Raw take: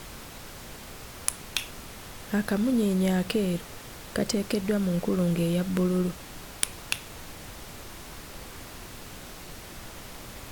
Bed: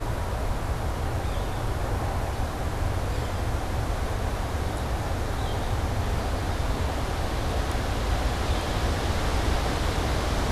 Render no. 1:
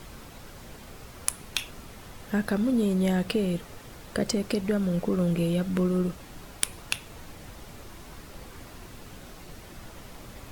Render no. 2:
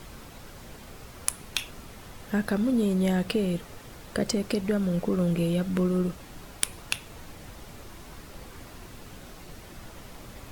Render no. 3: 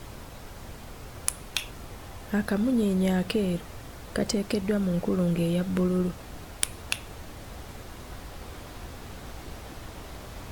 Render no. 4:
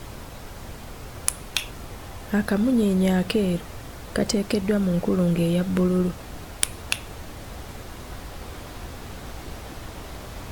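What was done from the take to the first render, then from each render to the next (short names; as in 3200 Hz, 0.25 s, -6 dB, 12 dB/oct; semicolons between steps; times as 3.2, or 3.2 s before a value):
denoiser 6 dB, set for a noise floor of -44 dBFS
nothing audible
add bed -18 dB
gain +4 dB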